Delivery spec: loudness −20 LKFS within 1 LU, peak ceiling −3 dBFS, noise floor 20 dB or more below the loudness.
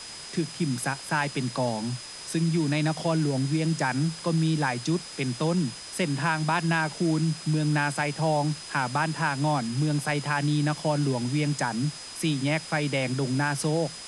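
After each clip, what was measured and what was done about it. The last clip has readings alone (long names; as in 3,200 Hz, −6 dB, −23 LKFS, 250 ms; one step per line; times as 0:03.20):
interfering tone 5,000 Hz; level of the tone −42 dBFS; background noise floor −41 dBFS; target noise floor −47 dBFS; integrated loudness −27.0 LKFS; sample peak −13.0 dBFS; target loudness −20.0 LKFS
→ notch filter 5,000 Hz, Q 30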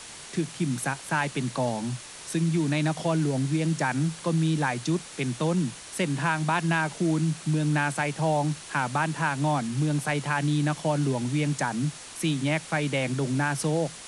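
interfering tone none found; background noise floor −43 dBFS; target noise floor −47 dBFS
→ broadband denoise 6 dB, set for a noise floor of −43 dBFS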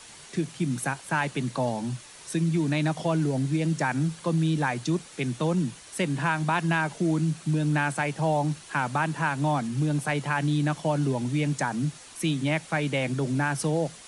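background noise floor −47 dBFS; integrated loudness −27.0 LKFS; sample peak −13.0 dBFS; target loudness −20.0 LKFS
→ level +7 dB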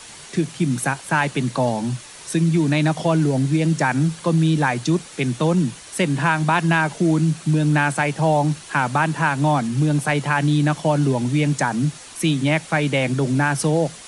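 integrated loudness −20.0 LKFS; sample peak −6.0 dBFS; background noise floor −40 dBFS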